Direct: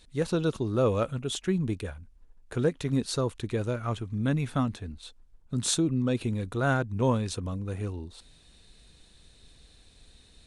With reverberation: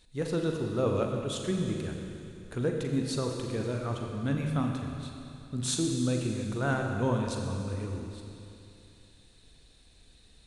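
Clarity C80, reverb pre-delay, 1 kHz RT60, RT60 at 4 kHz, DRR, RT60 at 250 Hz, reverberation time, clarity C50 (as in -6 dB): 3.5 dB, 39 ms, 2.8 s, 2.8 s, 1.5 dB, 2.8 s, 2.8 s, 2.5 dB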